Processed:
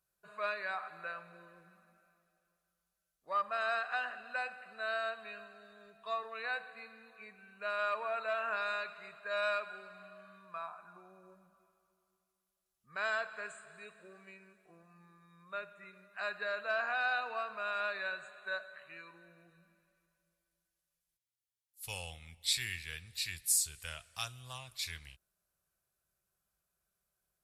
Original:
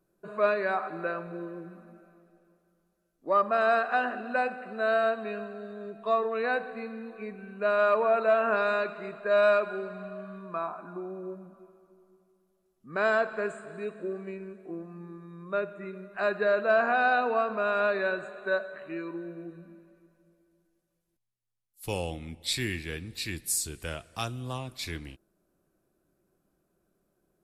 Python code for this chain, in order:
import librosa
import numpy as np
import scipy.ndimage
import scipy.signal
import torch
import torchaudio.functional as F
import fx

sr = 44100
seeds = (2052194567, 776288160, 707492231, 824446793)

y = scipy.signal.sosfilt(scipy.signal.butter(2, 42.0, 'highpass', fs=sr, output='sos'), x)
y = fx.tone_stack(y, sr, knobs='10-0-10')